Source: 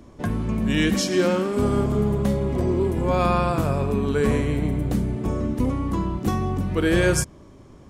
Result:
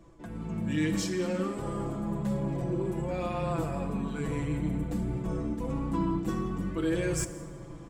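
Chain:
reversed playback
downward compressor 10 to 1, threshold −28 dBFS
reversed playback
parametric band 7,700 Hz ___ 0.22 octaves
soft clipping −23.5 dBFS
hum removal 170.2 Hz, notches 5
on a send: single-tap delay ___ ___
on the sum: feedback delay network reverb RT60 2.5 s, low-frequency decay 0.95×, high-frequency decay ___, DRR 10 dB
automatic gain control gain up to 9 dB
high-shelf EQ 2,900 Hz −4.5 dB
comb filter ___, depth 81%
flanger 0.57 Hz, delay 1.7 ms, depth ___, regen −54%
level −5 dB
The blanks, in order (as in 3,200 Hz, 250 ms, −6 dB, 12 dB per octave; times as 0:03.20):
+9 dB, 173 ms, −23.5 dB, 0.45×, 6 ms, 5.4 ms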